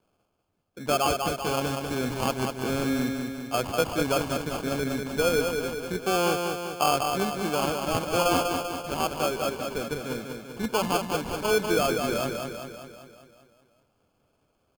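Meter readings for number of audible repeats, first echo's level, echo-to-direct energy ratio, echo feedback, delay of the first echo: 7, −5.0 dB, −3.0 dB, 58%, 195 ms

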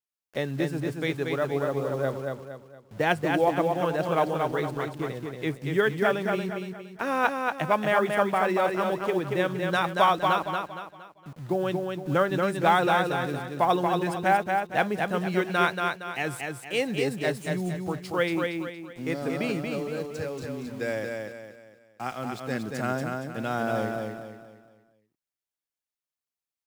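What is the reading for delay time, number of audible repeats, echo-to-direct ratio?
232 ms, 4, −3.5 dB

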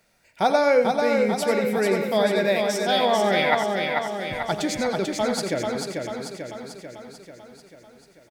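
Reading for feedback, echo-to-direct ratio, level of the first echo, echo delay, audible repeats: repeats not evenly spaced, −1.0 dB, −9.5 dB, 90 ms, 13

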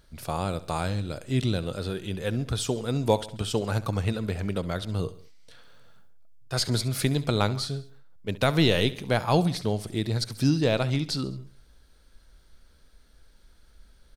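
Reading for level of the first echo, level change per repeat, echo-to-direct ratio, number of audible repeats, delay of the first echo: −17.0 dB, −5.5 dB, −15.5 dB, 3, 68 ms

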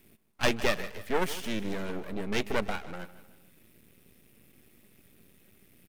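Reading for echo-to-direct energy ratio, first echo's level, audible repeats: −14.5 dB, −15.5 dB, 3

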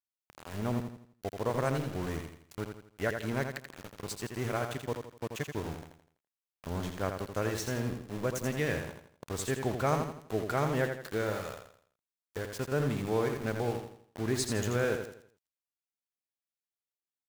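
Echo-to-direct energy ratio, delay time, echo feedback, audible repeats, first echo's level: −6.0 dB, 83 ms, 39%, 4, −6.5 dB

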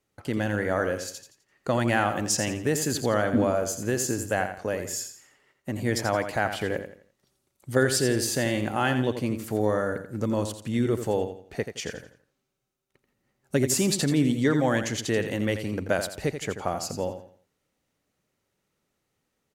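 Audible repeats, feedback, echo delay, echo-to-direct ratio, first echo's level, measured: 3, 33%, 85 ms, −8.5 dB, −9.0 dB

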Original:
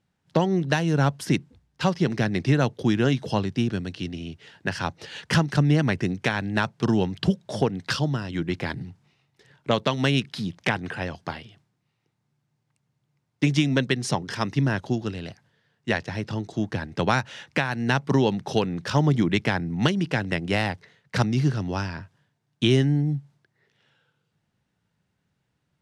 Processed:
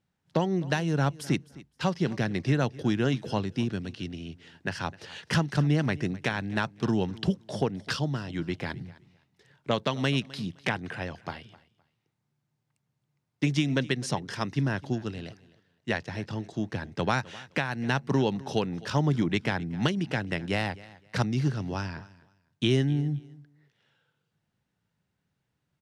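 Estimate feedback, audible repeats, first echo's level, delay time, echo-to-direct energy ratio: 21%, 2, −20.5 dB, 258 ms, −20.5 dB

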